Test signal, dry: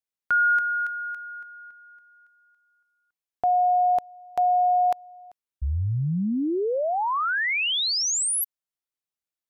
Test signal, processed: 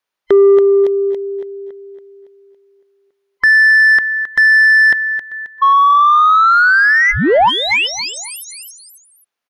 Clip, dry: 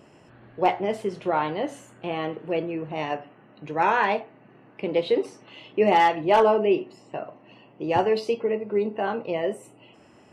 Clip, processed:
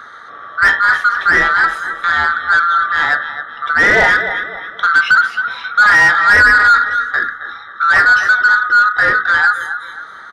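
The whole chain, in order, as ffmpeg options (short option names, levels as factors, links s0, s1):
-filter_complex "[0:a]afftfilt=real='real(if(lt(b,960),b+48*(1-2*mod(floor(b/48),2)),b),0)':imag='imag(if(lt(b,960),b+48*(1-2*mod(floor(b/48),2)),b),0)':win_size=2048:overlap=0.75,bandreject=f=7700:w=7.4,aecho=1:1:267|534|801:0.2|0.0718|0.0259,acrossover=split=2600[s0][s1];[s1]acompressor=threshold=0.0178:ratio=4:attack=1:release=60[s2];[s0][s2]amix=inputs=2:normalize=0,asplit=2[s3][s4];[s4]highpass=f=720:p=1,volume=7.94,asoftclip=type=tanh:threshold=0.398[s5];[s3][s5]amix=inputs=2:normalize=0,lowpass=f=1600:p=1,volume=0.501,volume=2.66"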